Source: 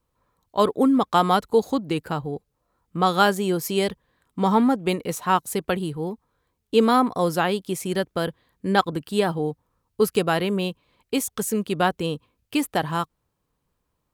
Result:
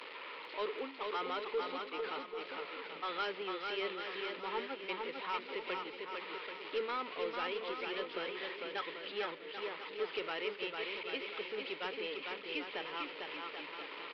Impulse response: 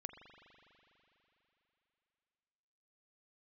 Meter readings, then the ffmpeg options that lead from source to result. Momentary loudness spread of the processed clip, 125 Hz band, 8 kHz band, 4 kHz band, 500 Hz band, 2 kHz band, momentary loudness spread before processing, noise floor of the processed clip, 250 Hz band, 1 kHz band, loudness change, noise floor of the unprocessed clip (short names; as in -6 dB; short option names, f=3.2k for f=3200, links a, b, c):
5 LU, -34.5 dB, under -35 dB, -9.5 dB, -15.5 dB, -9.5 dB, 11 LU, -49 dBFS, -25.0 dB, -17.0 dB, -16.5 dB, -76 dBFS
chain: -af "aeval=exprs='val(0)+0.5*0.0708*sgn(val(0))':c=same,aderivative,agate=range=-20dB:threshold=-36dB:ratio=16:detection=peak,highpass=f=230:w=0.5412,highpass=f=230:w=1.3066,equalizer=f=230:t=q:w=4:g=-7,equalizer=f=430:t=q:w=4:g=6,equalizer=f=730:t=q:w=4:g=-10,equalizer=f=1.1k:t=q:w=4:g=-6,equalizer=f=1.6k:t=q:w=4:g=-9,lowpass=f=2.5k:w=0.5412,lowpass=f=2.5k:w=1.3066,aresample=11025,asoftclip=type=tanh:threshold=-34dB,aresample=44100,acompressor=mode=upward:threshold=-48dB:ratio=2.5,aecho=1:1:450|787.5|1041|1230|1373:0.631|0.398|0.251|0.158|0.1,volume=4dB"